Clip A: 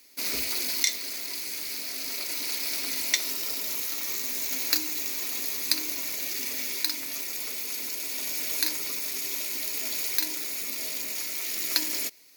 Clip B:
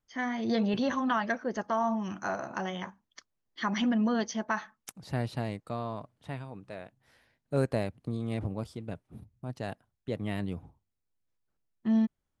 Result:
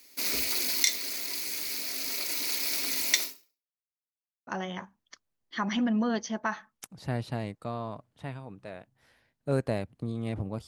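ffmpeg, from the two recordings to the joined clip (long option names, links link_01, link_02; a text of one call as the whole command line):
ffmpeg -i cue0.wav -i cue1.wav -filter_complex "[0:a]apad=whole_dur=10.67,atrim=end=10.67,asplit=2[link_01][link_02];[link_01]atrim=end=3.81,asetpts=PTS-STARTPTS,afade=type=out:start_time=3.23:duration=0.58:curve=exp[link_03];[link_02]atrim=start=3.81:end=4.47,asetpts=PTS-STARTPTS,volume=0[link_04];[1:a]atrim=start=2.52:end=8.72,asetpts=PTS-STARTPTS,afade=type=in:duration=0.004:curve=hsin[link_05];[link_03][link_04][link_05]concat=n=3:v=0:a=1" out.wav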